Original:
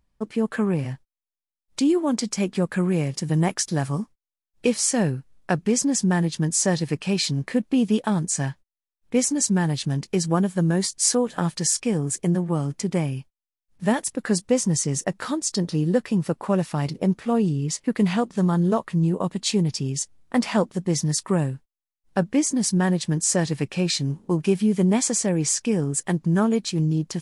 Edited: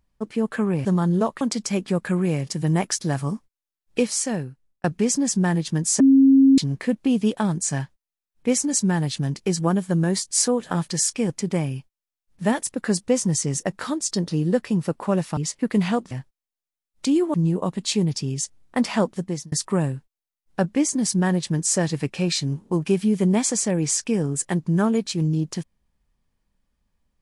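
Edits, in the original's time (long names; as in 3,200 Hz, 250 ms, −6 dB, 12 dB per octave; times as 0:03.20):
0:00.85–0:02.08: swap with 0:18.36–0:18.92
0:04.66–0:05.51: fade out
0:06.67–0:07.25: beep over 270 Hz −10 dBFS
0:11.97–0:12.71: remove
0:16.78–0:17.62: remove
0:20.76–0:21.10: fade out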